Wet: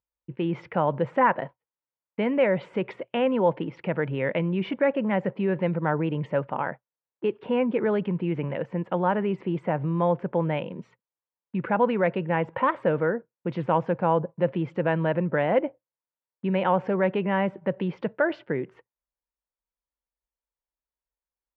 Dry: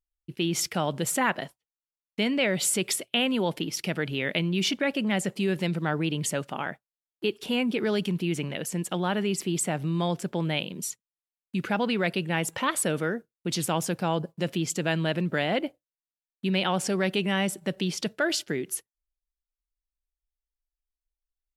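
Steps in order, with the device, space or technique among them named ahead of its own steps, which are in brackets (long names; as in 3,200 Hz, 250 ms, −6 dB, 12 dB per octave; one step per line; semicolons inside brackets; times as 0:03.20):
bass cabinet (loudspeaker in its box 63–2,100 Hz, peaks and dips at 130 Hz +5 dB, 520 Hz +9 dB, 950 Hz +9 dB)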